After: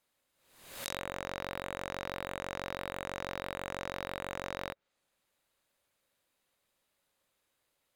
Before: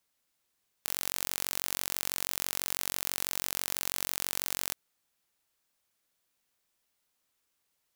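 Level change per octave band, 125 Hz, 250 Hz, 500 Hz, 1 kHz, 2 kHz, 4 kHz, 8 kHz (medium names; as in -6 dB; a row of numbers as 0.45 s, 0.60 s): +4.5 dB, +4.5 dB, +8.0 dB, +4.0 dB, +0.5 dB, -8.5 dB, -17.0 dB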